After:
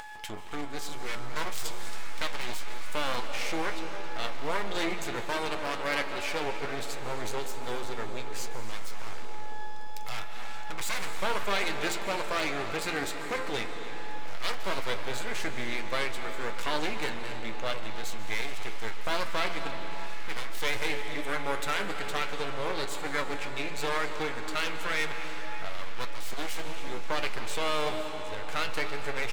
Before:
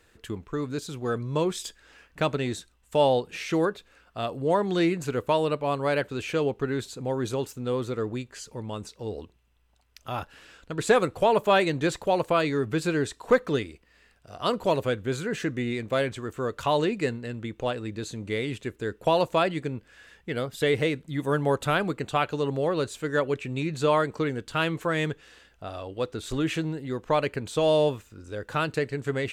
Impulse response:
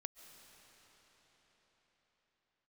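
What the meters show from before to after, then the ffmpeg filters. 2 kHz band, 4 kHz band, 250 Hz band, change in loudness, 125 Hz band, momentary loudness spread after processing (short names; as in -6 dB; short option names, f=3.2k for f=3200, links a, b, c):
0.0 dB, +0.5 dB, -11.0 dB, -6.5 dB, -12.0 dB, 9 LU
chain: -filter_complex "[0:a]aeval=exprs='val(0)+0.00631*sin(2*PI*850*n/s)':c=same,bandreject=f=86.5:t=h:w=4,bandreject=f=173:t=h:w=4,bandreject=f=259.5:t=h:w=4,bandreject=f=346:t=h:w=4,bandreject=f=432.5:t=h:w=4,bandreject=f=519:t=h:w=4,bandreject=f=605.5:t=h:w=4,bandreject=f=692:t=h:w=4,bandreject=f=778.5:t=h:w=4,bandreject=f=865:t=h:w=4,bandreject=f=951.5:t=h:w=4,bandreject=f=1.038k:t=h:w=4,bandreject=f=1.1245k:t=h:w=4,bandreject=f=1.211k:t=h:w=4,bandreject=f=1.2975k:t=h:w=4,bandreject=f=1.384k:t=h:w=4,bandreject=f=1.4705k:t=h:w=4,bandreject=f=1.557k:t=h:w=4,bandreject=f=1.6435k:t=h:w=4,bandreject=f=1.73k:t=h:w=4,bandreject=f=1.8165k:t=h:w=4,bandreject=f=1.903k:t=h:w=4,bandreject=f=1.9895k:t=h:w=4,bandreject=f=2.076k:t=h:w=4,bandreject=f=2.1625k:t=h:w=4,bandreject=f=2.249k:t=h:w=4,bandreject=f=2.3355k:t=h:w=4,bandreject=f=2.422k:t=h:w=4,bandreject=f=2.5085k:t=h:w=4,bandreject=f=2.595k:t=h:w=4,bandreject=f=2.6815k:t=h:w=4,bandreject=f=2.768k:t=h:w=4,bandreject=f=2.8545k:t=h:w=4,bandreject=f=2.941k:t=h:w=4,bandreject=f=3.0275k:t=h:w=4,bandreject=f=3.114k:t=h:w=4,alimiter=limit=-16dB:level=0:latency=1:release=42,asplit=2[a][b];[b]adelay=274.1,volume=-13dB,highshelf=f=4k:g=-6.17[c];[a][c]amix=inputs=2:normalize=0,aeval=exprs='max(val(0),0)':c=same,acompressor=mode=upward:threshold=-33dB:ratio=2.5[d];[1:a]atrim=start_sample=2205[e];[d][e]afir=irnorm=-1:irlink=0,aeval=exprs='0.0531*(abs(mod(val(0)/0.0531+3,4)-2)-1)':c=same,equalizer=f=2.2k:w=6.9:g=4.5,flanger=delay=8.7:depth=2:regen=63:speed=0.58:shape=sinusoidal,tiltshelf=f=870:g=-5.5,volume=8.5dB"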